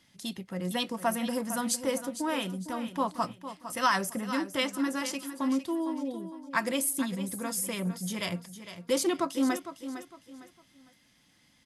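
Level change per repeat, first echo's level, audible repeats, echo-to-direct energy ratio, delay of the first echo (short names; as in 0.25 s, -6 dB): -10.0 dB, -11.5 dB, 3, -11.0 dB, 0.456 s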